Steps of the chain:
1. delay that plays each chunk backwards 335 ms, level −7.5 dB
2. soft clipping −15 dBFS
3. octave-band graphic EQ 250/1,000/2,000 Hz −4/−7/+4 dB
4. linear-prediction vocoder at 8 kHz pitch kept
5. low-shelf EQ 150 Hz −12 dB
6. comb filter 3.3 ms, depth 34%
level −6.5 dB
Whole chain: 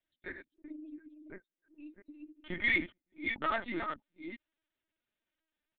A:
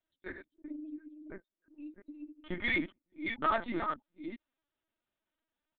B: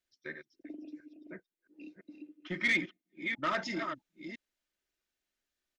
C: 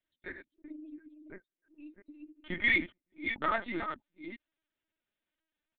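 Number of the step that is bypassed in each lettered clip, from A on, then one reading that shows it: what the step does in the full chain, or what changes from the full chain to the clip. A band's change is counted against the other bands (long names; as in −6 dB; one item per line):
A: 3, 2 kHz band −5.5 dB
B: 4, 4 kHz band +2.0 dB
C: 2, change in momentary loudness spread −1 LU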